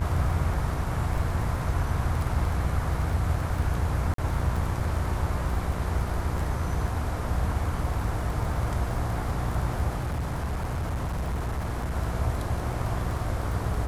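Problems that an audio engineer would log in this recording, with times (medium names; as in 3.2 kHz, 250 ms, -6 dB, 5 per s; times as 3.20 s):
buzz 60 Hz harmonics 40 -32 dBFS
crackle 20 per s -31 dBFS
4.14–4.18 s: dropout 43 ms
9.97–11.97 s: clipped -25.5 dBFS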